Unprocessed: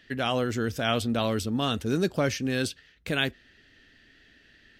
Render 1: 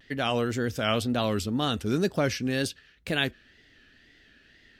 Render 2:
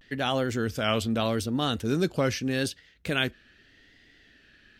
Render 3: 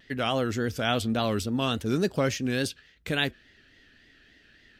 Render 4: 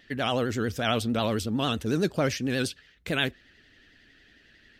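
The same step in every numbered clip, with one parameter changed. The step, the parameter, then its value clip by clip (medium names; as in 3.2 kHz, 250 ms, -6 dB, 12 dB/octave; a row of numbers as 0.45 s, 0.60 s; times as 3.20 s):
vibrato, rate: 2 Hz, 0.81 Hz, 3.5 Hz, 11 Hz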